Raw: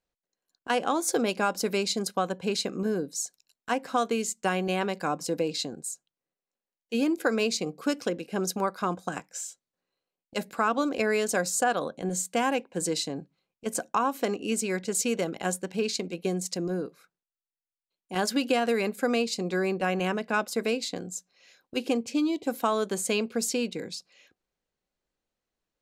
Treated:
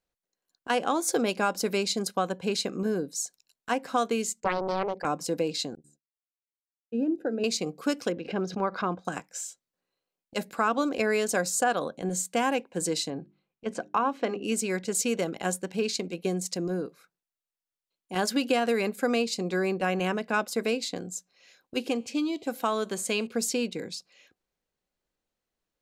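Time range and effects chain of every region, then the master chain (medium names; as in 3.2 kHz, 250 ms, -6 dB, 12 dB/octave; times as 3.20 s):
4.40–5.05 s: resonances exaggerated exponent 2 + loudspeaker Doppler distortion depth 0.74 ms
5.75–7.44 s: de-hum 72.97 Hz, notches 6 + expander -40 dBFS + boxcar filter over 40 samples
8.12–9.05 s: distance through air 210 m + swell ahead of each attack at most 150 dB/s
13.10–14.44 s: low-pass 3.5 kHz + hum notches 50/100/150/200/250/300/350/400 Hz
21.89–23.27 s: peaking EQ 2.7 kHz +3 dB 2.5 oct + feedback comb 73 Hz, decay 0.79 s, mix 30%
whole clip: none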